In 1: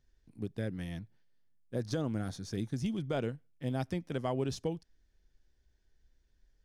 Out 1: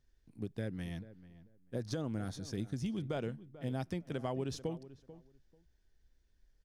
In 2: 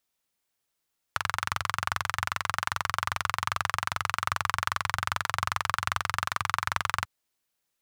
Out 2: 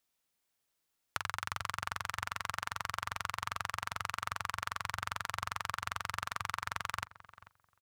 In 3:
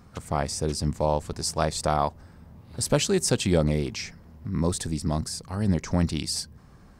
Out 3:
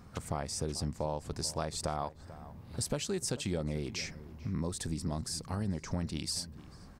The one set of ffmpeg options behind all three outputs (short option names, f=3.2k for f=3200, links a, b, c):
-filter_complex "[0:a]acompressor=threshold=-31dB:ratio=4,asplit=2[a][b];[b]adelay=440,lowpass=f=1.5k:p=1,volume=-15.5dB,asplit=2[c][d];[d]adelay=440,lowpass=f=1.5k:p=1,volume=0.19[e];[a][c][e]amix=inputs=3:normalize=0,volume=-1.5dB"